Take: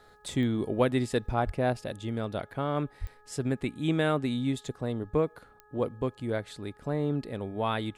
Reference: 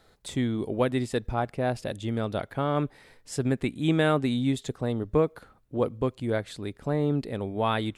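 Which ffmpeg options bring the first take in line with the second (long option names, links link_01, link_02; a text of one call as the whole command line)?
ffmpeg -i in.wav -filter_complex "[0:a]adeclick=threshold=4,bandreject=frequency=420.4:width_type=h:width=4,bandreject=frequency=840.8:width_type=h:width=4,bandreject=frequency=1261.2:width_type=h:width=4,bandreject=frequency=1681.6:width_type=h:width=4,asplit=3[link_01][link_02][link_03];[link_01]afade=type=out:start_time=1.45:duration=0.02[link_04];[link_02]highpass=frequency=140:width=0.5412,highpass=frequency=140:width=1.3066,afade=type=in:start_time=1.45:duration=0.02,afade=type=out:start_time=1.57:duration=0.02[link_05];[link_03]afade=type=in:start_time=1.57:duration=0.02[link_06];[link_04][link_05][link_06]amix=inputs=3:normalize=0,asplit=3[link_07][link_08][link_09];[link_07]afade=type=out:start_time=3:duration=0.02[link_10];[link_08]highpass=frequency=140:width=0.5412,highpass=frequency=140:width=1.3066,afade=type=in:start_time=3:duration=0.02,afade=type=out:start_time=3.12:duration=0.02[link_11];[link_09]afade=type=in:start_time=3.12:duration=0.02[link_12];[link_10][link_11][link_12]amix=inputs=3:normalize=0,asetnsamples=nb_out_samples=441:pad=0,asendcmd='1.73 volume volume 3.5dB',volume=0dB" out.wav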